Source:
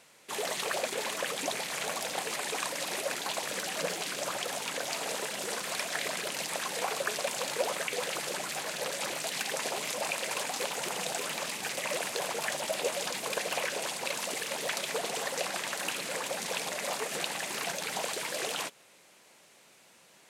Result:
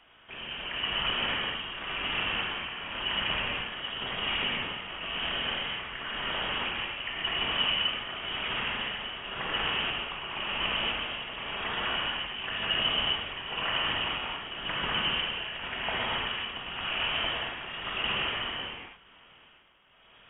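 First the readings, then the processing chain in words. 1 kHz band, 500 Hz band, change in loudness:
+1.0 dB, -6.0 dB, +2.5 dB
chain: tremolo 0.94 Hz, depth 71%; gated-style reverb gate 310 ms flat, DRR -5.5 dB; frequency inversion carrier 3.5 kHz

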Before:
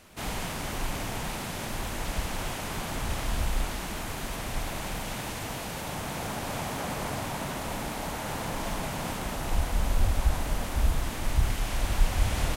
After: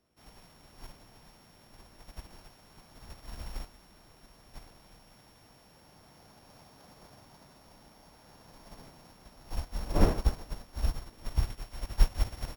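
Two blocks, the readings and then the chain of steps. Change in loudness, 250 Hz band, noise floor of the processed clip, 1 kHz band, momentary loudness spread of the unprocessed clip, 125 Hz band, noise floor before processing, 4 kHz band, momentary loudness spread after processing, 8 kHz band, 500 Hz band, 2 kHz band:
-2.5 dB, -6.5 dB, -59 dBFS, -12.5 dB, 5 LU, -6.5 dB, -36 dBFS, -12.0 dB, 24 LU, -15.5 dB, -7.0 dB, -16.0 dB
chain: sorted samples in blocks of 8 samples; wind noise 510 Hz -41 dBFS; upward expansion 2.5:1, over -33 dBFS; trim +2 dB

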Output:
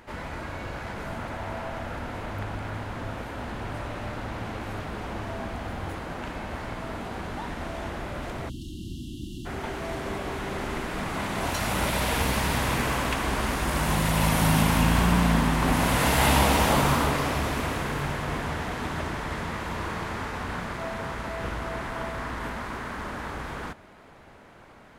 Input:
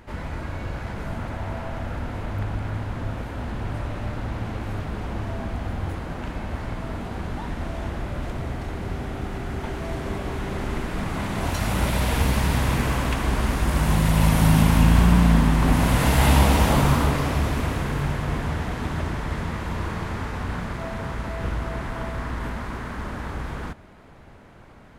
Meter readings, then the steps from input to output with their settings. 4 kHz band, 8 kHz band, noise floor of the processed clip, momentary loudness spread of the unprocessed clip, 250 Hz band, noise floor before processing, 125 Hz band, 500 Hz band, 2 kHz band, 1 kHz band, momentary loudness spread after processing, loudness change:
+1.0 dB, +1.0 dB, -50 dBFS, 14 LU, -4.0 dB, -46 dBFS, -6.5 dB, -0.5 dB, +1.0 dB, +0.5 dB, 14 LU, -3.5 dB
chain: bass shelf 220 Hz -10 dB; spectral selection erased 8.49–9.46 s, 380–2700 Hz; trim +1 dB

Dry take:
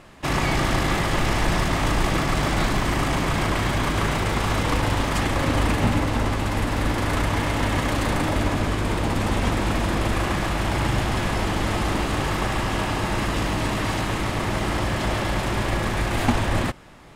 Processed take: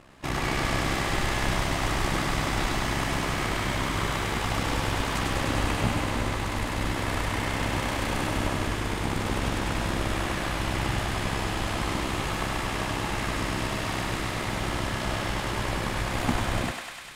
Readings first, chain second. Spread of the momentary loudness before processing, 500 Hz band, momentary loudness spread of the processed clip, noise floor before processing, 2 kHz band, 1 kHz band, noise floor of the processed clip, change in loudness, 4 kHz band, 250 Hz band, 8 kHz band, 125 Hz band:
3 LU, -5.5 dB, 3 LU, -26 dBFS, -3.0 dB, -4.5 dB, -31 dBFS, -4.5 dB, -2.5 dB, -6.0 dB, -2.5 dB, -6.0 dB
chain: AM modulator 66 Hz, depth 55%; on a send: thinning echo 100 ms, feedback 84%, high-pass 750 Hz, level -3.5 dB; on the sum: trim -3 dB

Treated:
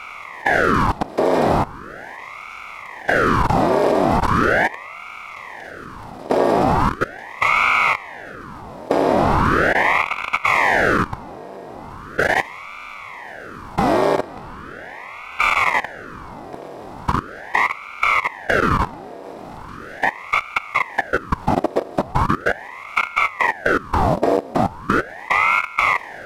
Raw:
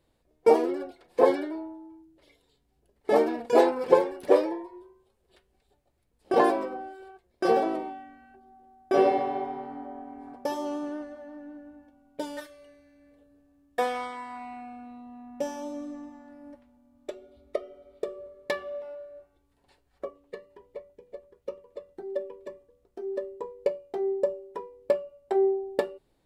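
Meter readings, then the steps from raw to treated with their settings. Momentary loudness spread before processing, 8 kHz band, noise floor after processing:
22 LU, +13.0 dB, -36 dBFS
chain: spectral levelling over time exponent 0.2; level held to a coarse grid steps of 19 dB; ring modulator with a swept carrier 940 Hz, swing 90%, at 0.39 Hz; trim +6 dB

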